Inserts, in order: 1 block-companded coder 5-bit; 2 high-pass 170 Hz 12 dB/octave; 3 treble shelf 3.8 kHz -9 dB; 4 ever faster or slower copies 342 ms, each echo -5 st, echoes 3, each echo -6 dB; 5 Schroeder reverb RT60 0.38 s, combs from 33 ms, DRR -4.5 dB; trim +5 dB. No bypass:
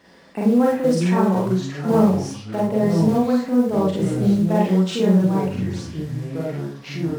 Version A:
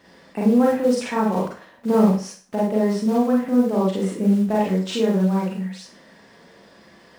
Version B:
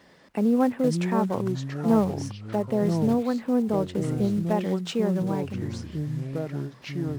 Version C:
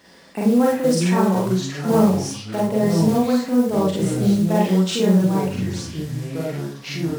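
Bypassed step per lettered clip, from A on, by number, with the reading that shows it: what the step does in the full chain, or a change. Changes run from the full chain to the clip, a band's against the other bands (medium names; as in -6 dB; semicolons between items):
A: 4, momentary loudness spread change +2 LU; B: 5, crest factor change +2.0 dB; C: 3, 8 kHz band +7.0 dB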